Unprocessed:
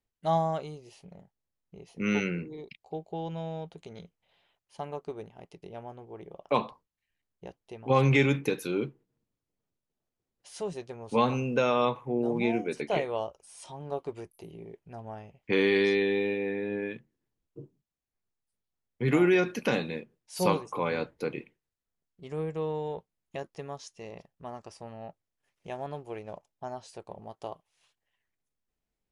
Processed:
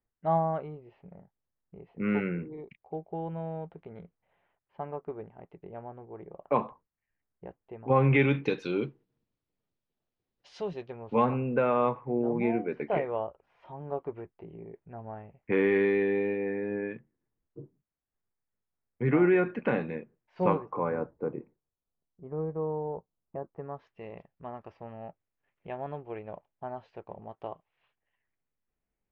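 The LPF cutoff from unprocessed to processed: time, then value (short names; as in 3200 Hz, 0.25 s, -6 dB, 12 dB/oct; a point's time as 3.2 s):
LPF 24 dB/oct
7.98 s 2000 Hz
8.53 s 4700 Hz
10.55 s 4700 Hz
11.27 s 2100 Hz
20.43 s 2100 Hz
21.14 s 1200 Hz
23.47 s 1200 Hz
23.99 s 2600 Hz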